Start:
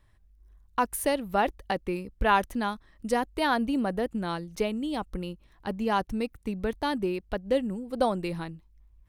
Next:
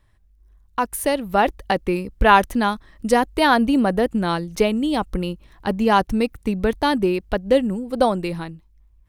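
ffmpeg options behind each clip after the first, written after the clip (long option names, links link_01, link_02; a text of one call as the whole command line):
ffmpeg -i in.wav -af "dynaudnorm=framelen=280:gausssize=9:maxgain=7.5dB,volume=2.5dB" out.wav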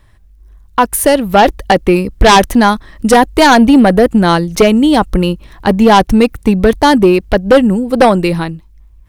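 ffmpeg -i in.wav -af "aeval=exprs='0.794*sin(PI/2*2.51*val(0)/0.794)':channel_layout=same,volume=1dB" out.wav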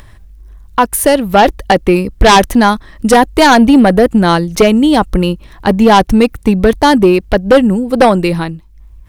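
ffmpeg -i in.wav -af "acompressor=mode=upward:threshold=-28dB:ratio=2.5" out.wav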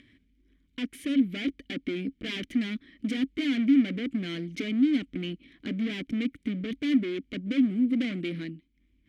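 ffmpeg -i in.wav -filter_complex "[0:a]volume=15.5dB,asoftclip=hard,volume=-15.5dB,asplit=3[link_01][link_02][link_03];[link_01]bandpass=frequency=270:width_type=q:width=8,volume=0dB[link_04];[link_02]bandpass=frequency=2290:width_type=q:width=8,volume=-6dB[link_05];[link_03]bandpass=frequency=3010:width_type=q:width=8,volume=-9dB[link_06];[link_04][link_05][link_06]amix=inputs=3:normalize=0" out.wav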